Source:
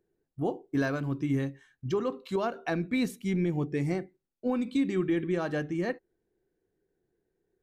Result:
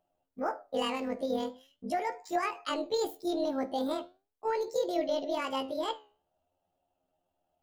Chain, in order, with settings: rotating-head pitch shifter +10 st; flange 0.41 Hz, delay 5.1 ms, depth 9.5 ms, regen +80%; trim +3 dB

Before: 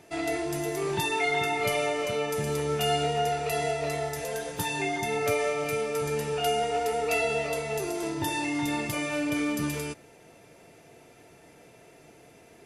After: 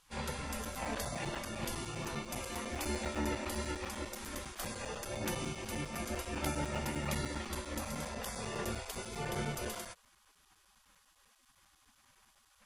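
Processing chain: spectral gate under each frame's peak -20 dB weak; tilt shelf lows +8 dB, about 1.1 kHz; crackling interface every 0.10 s, samples 256, zero; trim +3 dB

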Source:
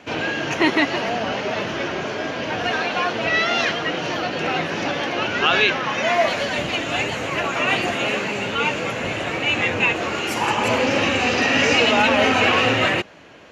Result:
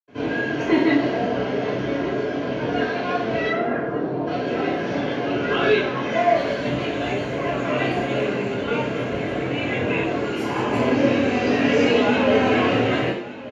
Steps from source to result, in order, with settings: 3.39–4.18 s: low-pass 2.2 kHz -> 1 kHz 24 dB/octave; delay 1180 ms -17.5 dB; reverberation RT60 0.55 s, pre-delay 77 ms; trim -4 dB

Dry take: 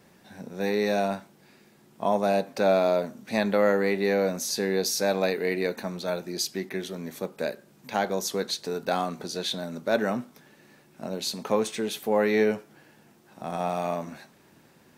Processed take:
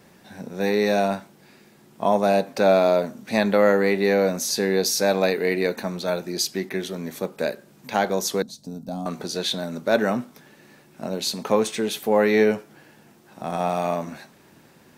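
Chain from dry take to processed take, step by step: 8.42–9.06 s: FFT filter 270 Hz 0 dB, 380 Hz -21 dB, 640 Hz -10 dB, 1.9 kHz -30 dB, 5.6 kHz -11 dB; trim +4.5 dB

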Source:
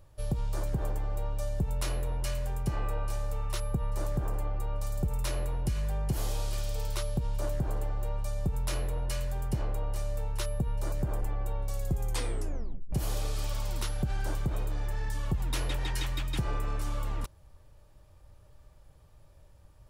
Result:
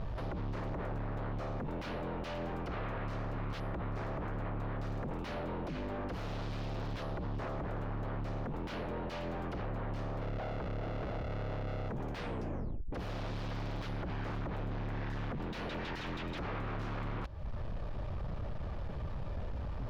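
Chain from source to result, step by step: 10.21–11.89 s: sorted samples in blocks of 64 samples; in parallel at -1.5 dB: peak limiter -26.5 dBFS, peak gain reduction 7 dB; on the sum: compression 8:1, threshold -41 dBFS, peak gain reduction 19 dB; sine folder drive 17 dB, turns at -30.5 dBFS; distance through air 270 m; trim -3.5 dB

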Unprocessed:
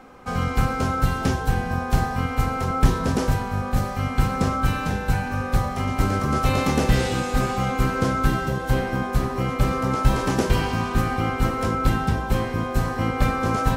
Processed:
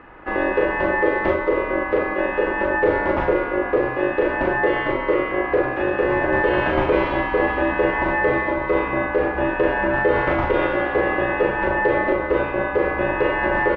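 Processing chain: low-pass 2.3 kHz 24 dB/octave; peaking EQ 240 Hz -13 dB 0.68 oct; peak limiter -14.5 dBFS, peak gain reduction 8 dB; ring modulator 460 Hz; doubling 39 ms -4 dB; trim +6.5 dB

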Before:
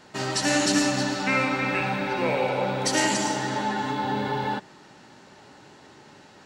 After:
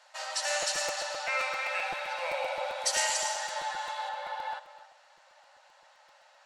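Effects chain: brick-wall FIR band-pass 510–13000 Hz; treble shelf 4 kHz +2.5 dB, from 1.39 s +7.5 dB, from 4.09 s -3 dB; reverberation RT60 0.35 s, pre-delay 192 ms, DRR 13 dB; crackling interface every 0.13 s, samples 256, repeat, from 0.62 s; trim -7 dB

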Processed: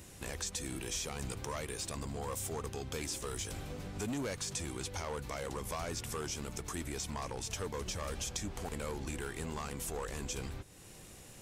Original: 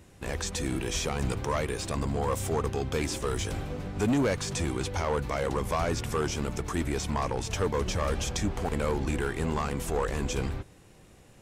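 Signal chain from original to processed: treble shelf 3.7 kHz +11.5 dB; compression 2:1, threshold -46 dBFS, peak gain reduction 13.5 dB

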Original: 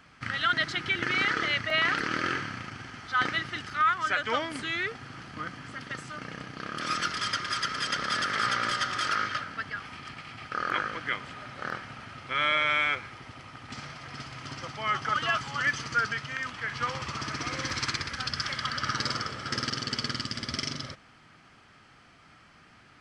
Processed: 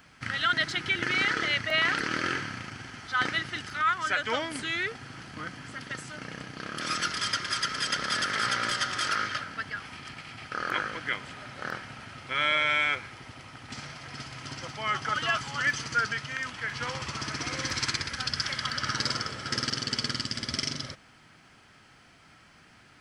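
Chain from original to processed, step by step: treble shelf 8.7 kHz +11 dB; band-stop 1.2 kHz, Q 12

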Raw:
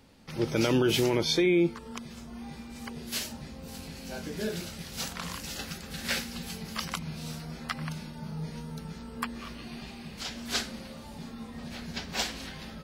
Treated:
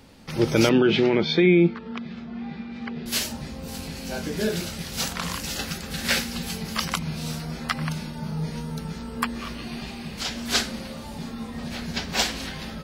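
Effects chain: 0.69–3.06 s: cabinet simulation 110–3600 Hz, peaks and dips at 130 Hz -8 dB, 190 Hz +9 dB, 300 Hz -4 dB, 550 Hz -5 dB, 990 Hz -7 dB, 3 kHz -4 dB; trim +7.5 dB

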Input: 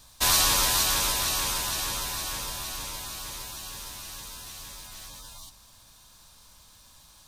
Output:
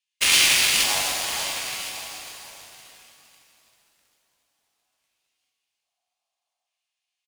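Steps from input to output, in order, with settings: LFO high-pass square 0.6 Hz 880–2900 Hz; Chebyshev shaper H 3 -28 dB, 5 -10 dB, 7 -9 dB, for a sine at -6.5 dBFS; formant shift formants -5 st; on a send: delay 1063 ms -15 dB; on the sum: pitch-shifted reverb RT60 2.3 s, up +7 st, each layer -8 dB, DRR 2.5 dB

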